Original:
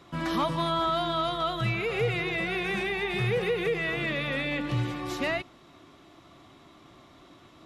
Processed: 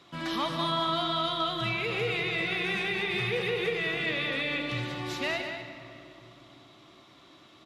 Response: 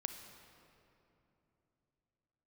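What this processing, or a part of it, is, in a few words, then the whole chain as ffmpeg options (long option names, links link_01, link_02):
PA in a hall: -filter_complex "[0:a]highpass=frequency=130:poles=1,equalizer=frequency=3700:width_type=o:width=1.5:gain=7,aecho=1:1:197:0.398[link_01];[1:a]atrim=start_sample=2205[link_02];[link_01][link_02]afir=irnorm=-1:irlink=0,volume=-2.5dB"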